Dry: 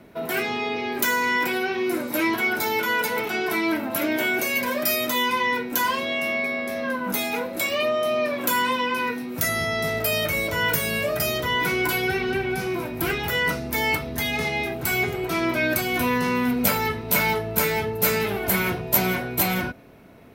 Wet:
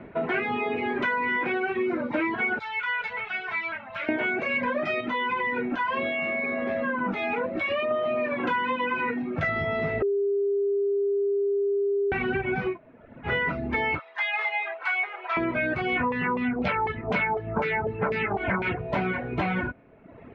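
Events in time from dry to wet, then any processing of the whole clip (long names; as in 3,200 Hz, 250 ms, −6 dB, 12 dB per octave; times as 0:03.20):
0:02.59–0:04.09: guitar amp tone stack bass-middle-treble 10-0-10
0:05.00–0:07.91: downward compressor, threshold −24 dBFS
0:10.02–0:12.12: beep over 401 Hz −18 dBFS
0:12.74–0:13.28: fill with room tone, crossfade 0.10 s
0:13.99–0:15.37: high-pass filter 760 Hz 24 dB per octave
0:15.87–0:18.79: auto-filter low-pass saw down 4 Hz 670–7,600 Hz
whole clip: reverb reduction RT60 0.96 s; low-pass filter 2,500 Hz 24 dB per octave; downward compressor, threshold −29 dBFS; level +5.5 dB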